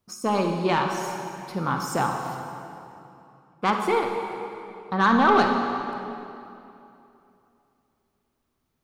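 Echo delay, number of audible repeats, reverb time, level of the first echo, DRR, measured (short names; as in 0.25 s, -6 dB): none, none, 2.8 s, none, 3.0 dB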